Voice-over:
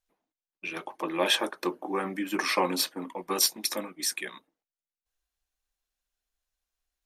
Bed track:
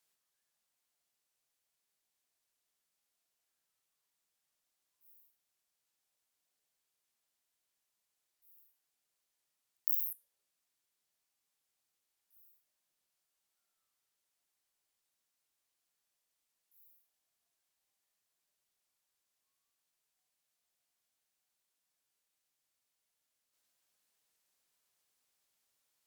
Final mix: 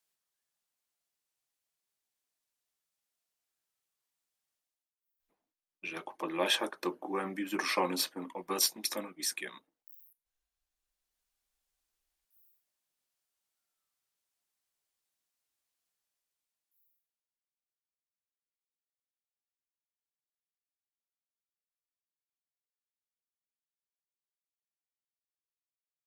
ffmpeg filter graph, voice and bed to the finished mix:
-filter_complex "[0:a]adelay=5200,volume=-4.5dB[a];[1:a]volume=18dB,afade=t=out:st=4.53:d=0.4:silence=0.1,afade=t=in:st=10.51:d=0.77:silence=0.0891251,afade=t=out:st=15.83:d=1.64:silence=0.0316228[b];[a][b]amix=inputs=2:normalize=0"

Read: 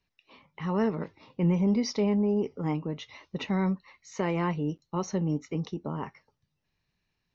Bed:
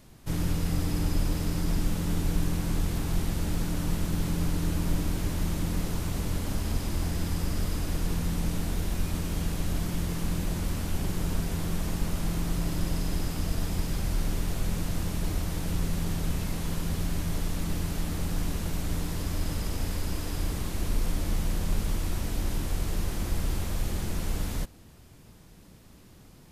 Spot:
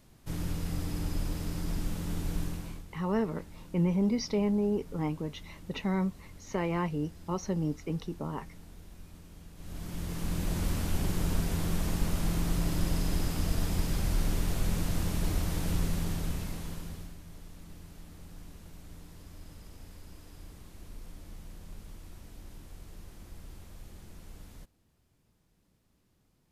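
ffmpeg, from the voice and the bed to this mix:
-filter_complex "[0:a]adelay=2350,volume=-2.5dB[a];[1:a]volume=14dB,afade=t=out:st=2.41:d=0.43:silence=0.188365,afade=t=in:st=9.55:d=1.09:silence=0.1,afade=t=out:st=15.72:d=1.45:silence=0.125893[b];[a][b]amix=inputs=2:normalize=0"

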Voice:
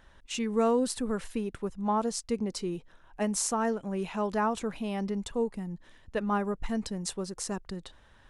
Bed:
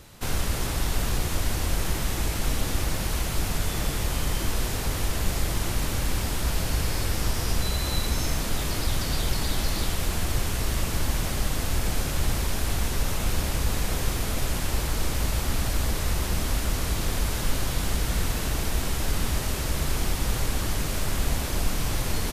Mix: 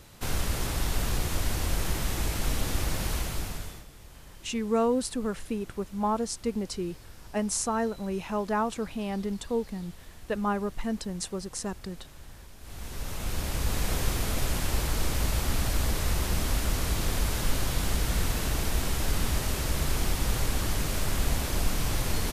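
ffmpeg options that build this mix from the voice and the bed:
-filter_complex "[0:a]adelay=4150,volume=0.5dB[a];[1:a]volume=18.5dB,afade=t=out:st=3.11:d=0.74:silence=0.1,afade=t=in:st=12.59:d=1.31:silence=0.0891251[b];[a][b]amix=inputs=2:normalize=0"

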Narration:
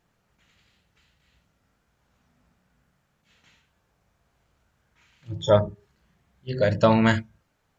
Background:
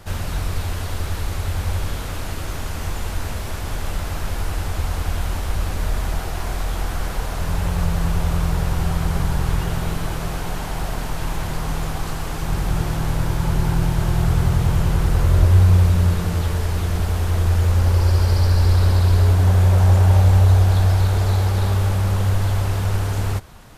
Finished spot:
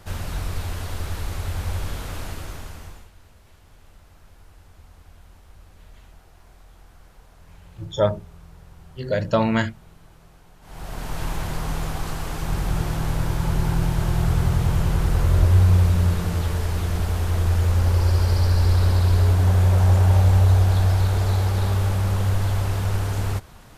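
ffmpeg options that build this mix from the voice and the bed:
-filter_complex "[0:a]adelay=2500,volume=-1.5dB[a];[1:a]volume=19dB,afade=t=out:st=2.21:d=0.89:silence=0.0841395,afade=t=in:st=10.61:d=0.59:silence=0.0707946[b];[a][b]amix=inputs=2:normalize=0"

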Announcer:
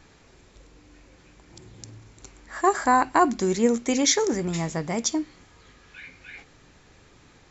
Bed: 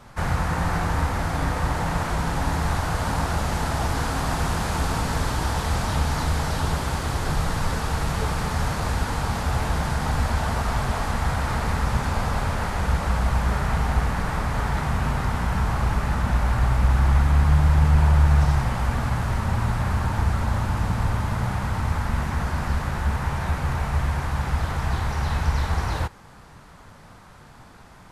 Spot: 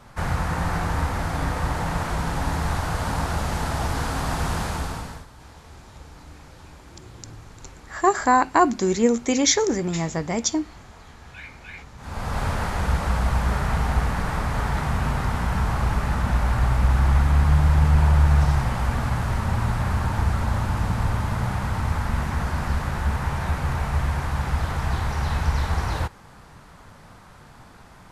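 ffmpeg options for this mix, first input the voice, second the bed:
-filter_complex "[0:a]adelay=5400,volume=2dB[a];[1:a]volume=21dB,afade=t=out:st=4.6:d=0.66:silence=0.0891251,afade=t=in:st=11.97:d=0.49:silence=0.0794328[b];[a][b]amix=inputs=2:normalize=0"

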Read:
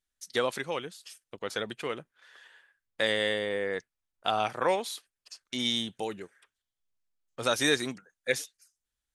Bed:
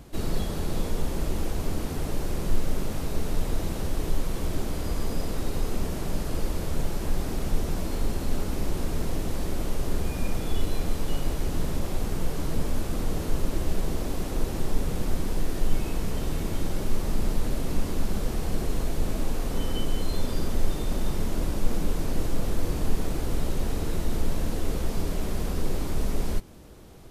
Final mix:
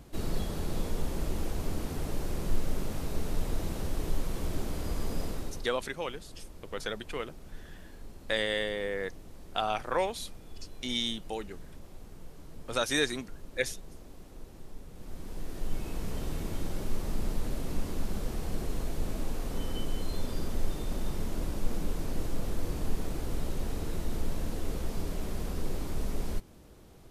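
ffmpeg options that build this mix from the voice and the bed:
-filter_complex "[0:a]adelay=5300,volume=-2.5dB[a];[1:a]volume=9.5dB,afade=t=out:st=5.25:d=0.46:silence=0.16788,afade=t=in:st=14.93:d=1.21:silence=0.199526[b];[a][b]amix=inputs=2:normalize=0"

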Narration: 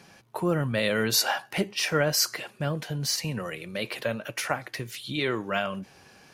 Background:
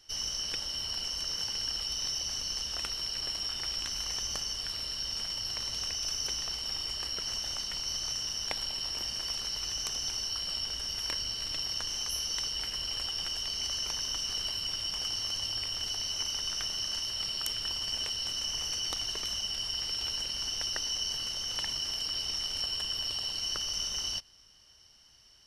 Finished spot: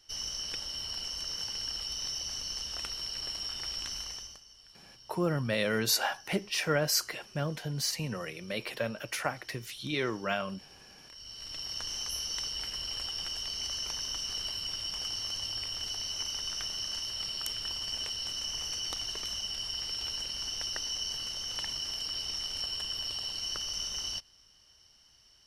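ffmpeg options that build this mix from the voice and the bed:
-filter_complex "[0:a]adelay=4750,volume=-4dB[a];[1:a]volume=16dB,afade=t=out:st=3.93:d=0.47:silence=0.125893,afade=t=in:st=11.08:d=0.81:silence=0.11885[b];[a][b]amix=inputs=2:normalize=0"

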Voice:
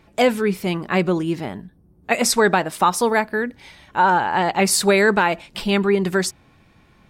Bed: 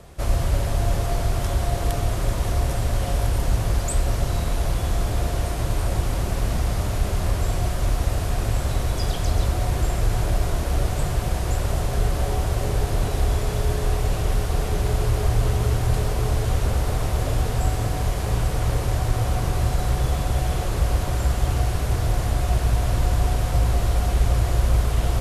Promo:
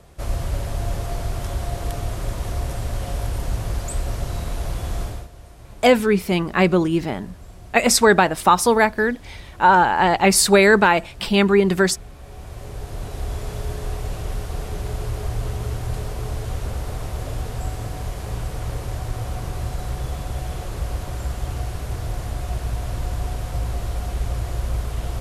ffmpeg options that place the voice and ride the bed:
-filter_complex "[0:a]adelay=5650,volume=2.5dB[a];[1:a]volume=10dB,afade=t=out:st=5.02:d=0.26:silence=0.16788,afade=t=in:st=12.19:d=1.27:silence=0.211349[b];[a][b]amix=inputs=2:normalize=0"

